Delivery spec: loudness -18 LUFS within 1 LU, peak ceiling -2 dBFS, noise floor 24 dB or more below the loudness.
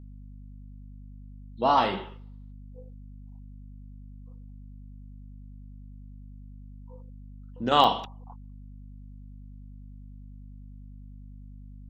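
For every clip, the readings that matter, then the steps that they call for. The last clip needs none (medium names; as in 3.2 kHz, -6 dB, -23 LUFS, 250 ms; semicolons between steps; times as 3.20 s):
dropouts 1; longest dropout 6.1 ms; hum 50 Hz; highest harmonic 250 Hz; hum level -42 dBFS; loudness -24.5 LUFS; peak level -5.5 dBFS; loudness target -18.0 LUFS
-> interpolate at 7.84 s, 6.1 ms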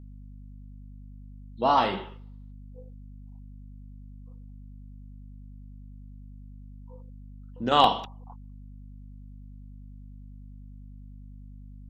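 dropouts 0; hum 50 Hz; highest harmonic 250 Hz; hum level -42 dBFS
-> de-hum 50 Hz, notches 5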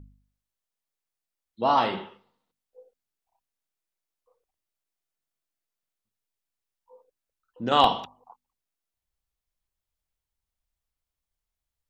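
hum not found; loudness -24.5 LUFS; peak level -5.0 dBFS; loudness target -18.0 LUFS
-> trim +6.5 dB; peak limiter -2 dBFS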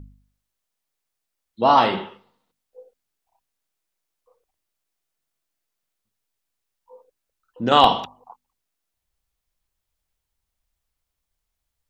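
loudness -18.5 LUFS; peak level -2.0 dBFS; noise floor -81 dBFS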